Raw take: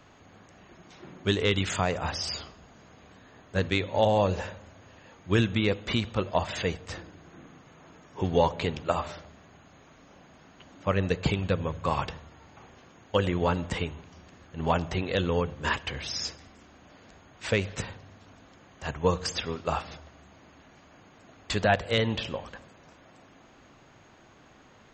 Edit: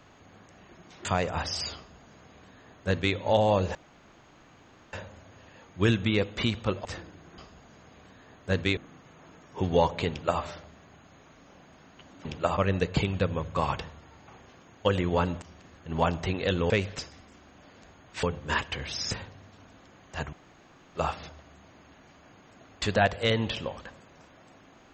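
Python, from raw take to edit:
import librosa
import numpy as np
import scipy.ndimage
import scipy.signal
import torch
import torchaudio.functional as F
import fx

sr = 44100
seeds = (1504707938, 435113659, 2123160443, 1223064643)

y = fx.edit(x, sr, fx.cut(start_s=1.05, length_s=0.68),
    fx.duplicate(start_s=2.44, length_s=1.39, to_s=7.38),
    fx.insert_room_tone(at_s=4.43, length_s=1.18),
    fx.cut(start_s=6.35, length_s=0.5),
    fx.duplicate(start_s=8.7, length_s=0.32, to_s=10.86),
    fx.cut(start_s=13.71, length_s=0.39),
    fx.swap(start_s=15.38, length_s=0.88, other_s=17.5, other_length_s=0.29),
    fx.room_tone_fill(start_s=19.01, length_s=0.62), tone=tone)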